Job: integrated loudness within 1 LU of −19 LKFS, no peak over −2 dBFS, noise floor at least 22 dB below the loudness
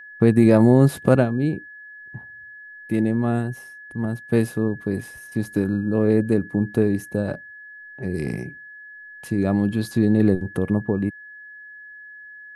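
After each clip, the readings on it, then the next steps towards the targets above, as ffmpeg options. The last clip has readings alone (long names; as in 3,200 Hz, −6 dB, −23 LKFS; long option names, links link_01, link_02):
interfering tone 1,700 Hz; level of the tone −39 dBFS; integrated loudness −21.5 LKFS; sample peak −3.0 dBFS; target loudness −19.0 LKFS
→ -af "bandreject=frequency=1700:width=30"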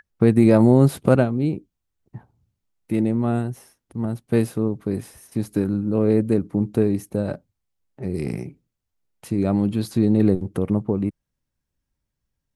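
interfering tone none found; integrated loudness −21.5 LKFS; sample peak −3.0 dBFS; target loudness −19.0 LKFS
→ -af "volume=2.5dB,alimiter=limit=-2dB:level=0:latency=1"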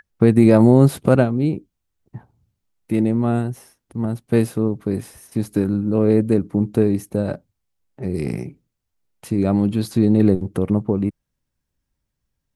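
integrated loudness −19.0 LKFS; sample peak −2.0 dBFS; background noise floor −78 dBFS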